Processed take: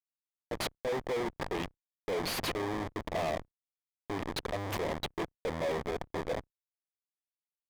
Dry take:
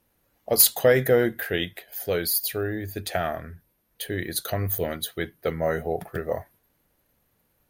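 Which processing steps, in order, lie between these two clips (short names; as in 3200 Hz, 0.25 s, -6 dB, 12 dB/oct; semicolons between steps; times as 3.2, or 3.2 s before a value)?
opening faded in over 2.28 s; in parallel at 0 dB: compressor 5:1, threshold -35 dBFS, peak gain reduction 13.5 dB; on the sum: HPF 46 Hz 6 dB/oct; low-pass opened by the level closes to 350 Hz, open at -20.5 dBFS; Schmitt trigger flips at -27.5 dBFS; bell 1400 Hz -10 dB 0.47 oct; level quantiser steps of 17 dB; overdrive pedal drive 28 dB, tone 3600 Hz, clips at -22 dBFS; high shelf 8900 Hz -3.5 dB; gain -2.5 dB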